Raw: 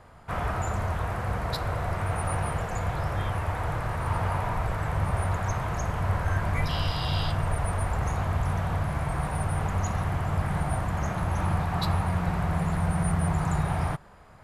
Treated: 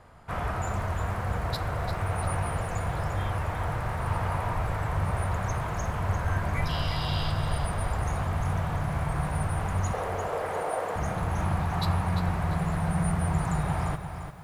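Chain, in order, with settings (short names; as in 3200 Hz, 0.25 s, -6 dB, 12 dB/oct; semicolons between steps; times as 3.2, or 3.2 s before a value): 9.93–10.96 resonant high-pass 470 Hz, resonance Q 5.3; lo-fi delay 0.347 s, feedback 35%, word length 9-bit, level -8.5 dB; gain -1.5 dB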